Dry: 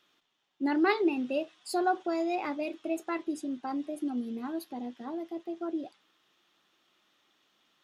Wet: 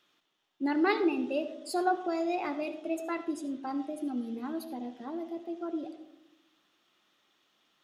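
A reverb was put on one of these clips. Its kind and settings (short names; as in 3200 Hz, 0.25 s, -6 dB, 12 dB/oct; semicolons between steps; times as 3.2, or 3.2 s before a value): digital reverb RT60 0.9 s, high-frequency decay 0.25×, pre-delay 35 ms, DRR 11 dB; gain -1 dB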